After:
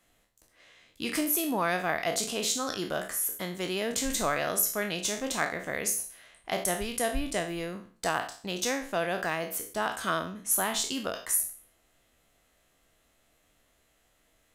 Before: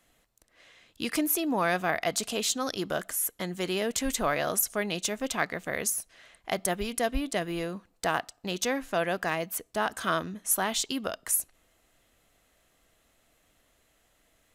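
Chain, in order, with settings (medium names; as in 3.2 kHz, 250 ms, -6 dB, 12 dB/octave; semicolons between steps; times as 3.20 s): spectral sustain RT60 0.43 s; trim -2.5 dB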